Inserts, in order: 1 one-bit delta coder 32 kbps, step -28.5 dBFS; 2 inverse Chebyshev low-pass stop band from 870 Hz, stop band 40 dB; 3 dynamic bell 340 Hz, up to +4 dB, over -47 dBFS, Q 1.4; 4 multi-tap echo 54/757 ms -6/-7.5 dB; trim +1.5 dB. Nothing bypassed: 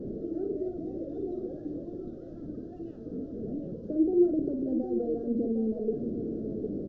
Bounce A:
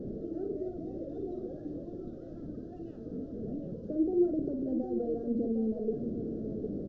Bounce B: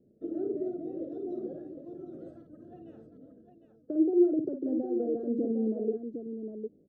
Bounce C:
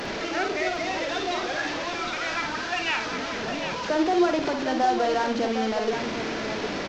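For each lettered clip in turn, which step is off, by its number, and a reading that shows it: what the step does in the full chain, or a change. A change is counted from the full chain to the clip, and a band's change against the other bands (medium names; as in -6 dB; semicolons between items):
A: 3, loudness change -3.0 LU; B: 1, momentary loudness spread change +7 LU; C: 2, crest factor change -2.5 dB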